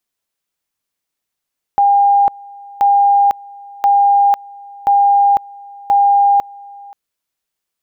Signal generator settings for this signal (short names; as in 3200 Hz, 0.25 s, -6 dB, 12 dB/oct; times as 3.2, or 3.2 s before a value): two-level tone 805 Hz -7.5 dBFS, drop 24.5 dB, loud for 0.50 s, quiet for 0.53 s, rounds 5